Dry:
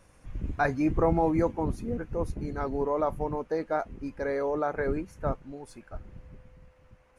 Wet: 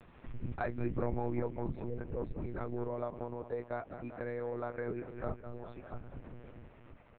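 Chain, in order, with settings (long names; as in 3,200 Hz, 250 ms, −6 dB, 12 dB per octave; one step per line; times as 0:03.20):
repeating echo 197 ms, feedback 53%, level −13 dB
one-pitch LPC vocoder at 8 kHz 120 Hz
dynamic equaliser 990 Hz, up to −5 dB, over −41 dBFS, Q 0.91
downward compressor 1.5 to 1, threshold −48 dBFS, peak gain reduction 10.5 dB
0:02.88–0:05.14: low-shelf EQ 77 Hz −12 dB
level +1 dB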